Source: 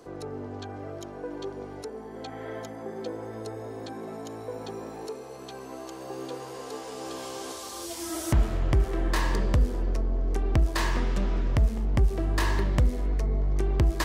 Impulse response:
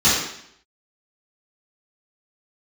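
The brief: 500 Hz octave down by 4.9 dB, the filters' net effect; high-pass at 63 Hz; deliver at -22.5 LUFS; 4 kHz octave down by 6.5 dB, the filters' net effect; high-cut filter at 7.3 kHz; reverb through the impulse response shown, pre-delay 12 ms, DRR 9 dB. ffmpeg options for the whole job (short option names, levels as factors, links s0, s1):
-filter_complex "[0:a]highpass=63,lowpass=7300,equalizer=f=500:t=o:g=-6.5,equalizer=f=4000:t=o:g=-8,asplit=2[s0][s1];[1:a]atrim=start_sample=2205,adelay=12[s2];[s1][s2]afir=irnorm=-1:irlink=0,volume=0.0316[s3];[s0][s3]amix=inputs=2:normalize=0,volume=3.35"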